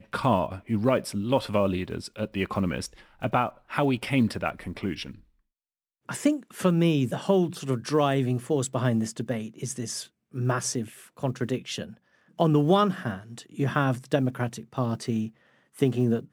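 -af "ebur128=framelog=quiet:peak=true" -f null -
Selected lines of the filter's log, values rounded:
Integrated loudness:
  I:         -27.1 LUFS
  Threshold: -37.5 LUFS
Loudness range:
  LRA:         3.8 LU
  Threshold: -47.7 LUFS
  LRA low:   -29.6 LUFS
  LRA high:  -25.8 LUFS
True peak:
  Peak:       -8.9 dBFS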